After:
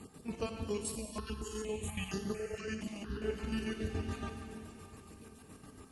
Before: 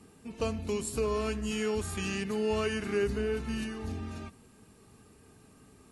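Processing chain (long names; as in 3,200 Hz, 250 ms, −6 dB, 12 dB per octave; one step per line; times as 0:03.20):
time-frequency cells dropped at random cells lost 21%
downward compressor, threshold −37 dBFS, peak gain reduction 11.5 dB
square-wave tremolo 7.1 Hz, depth 60%, duty 50%
convolution reverb RT60 3.3 s, pre-delay 51 ms, DRR 5 dB
0:00.95–0:03.22: step-sequenced phaser 4.3 Hz 410–8,000 Hz
level +5 dB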